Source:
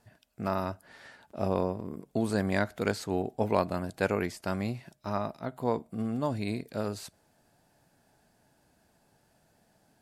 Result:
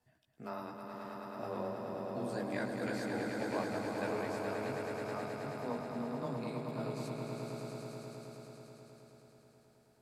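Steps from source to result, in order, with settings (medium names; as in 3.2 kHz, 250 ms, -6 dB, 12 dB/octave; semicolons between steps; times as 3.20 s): chorus voices 4, 0.53 Hz, delay 15 ms, depth 2.5 ms; frequency shift +15 Hz; echo with a slow build-up 107 ms, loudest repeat 5, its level -6 dB; trim -8.5 dB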